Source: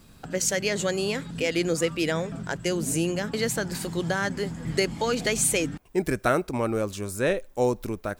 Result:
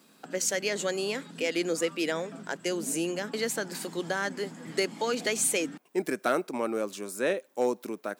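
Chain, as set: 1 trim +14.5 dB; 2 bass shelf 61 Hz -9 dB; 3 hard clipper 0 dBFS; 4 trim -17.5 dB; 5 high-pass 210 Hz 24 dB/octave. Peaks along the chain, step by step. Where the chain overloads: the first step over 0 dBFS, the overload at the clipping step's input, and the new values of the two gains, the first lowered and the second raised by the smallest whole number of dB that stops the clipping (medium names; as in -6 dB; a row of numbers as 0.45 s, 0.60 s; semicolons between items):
+5.5 dBFS, +6.0 dBFS, 0.0 dBFS, -17.5 dBFS, -11.0 dBFS; step 1, 6.0 dB; step 1 +8.5 dB, step 4 -11.5 dB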